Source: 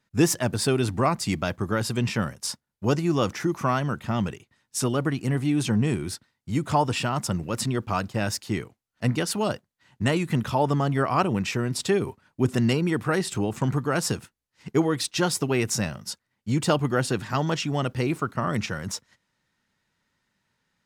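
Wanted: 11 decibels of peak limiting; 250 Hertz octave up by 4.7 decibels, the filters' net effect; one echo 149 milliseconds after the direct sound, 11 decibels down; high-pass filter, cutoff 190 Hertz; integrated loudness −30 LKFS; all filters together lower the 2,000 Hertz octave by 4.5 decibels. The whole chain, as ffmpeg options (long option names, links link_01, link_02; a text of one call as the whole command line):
ffmpeg -i in.wav -af "highpass=190,equalizer=frequency=250:width_type=o:gain=8,equalizer=frequency=2000:width_type=o:gain=-6.5,alimiter=limit=-16.5dB:level=0:latency=1,aecho=1:1:149:0.282,volume=-3dB" out.wav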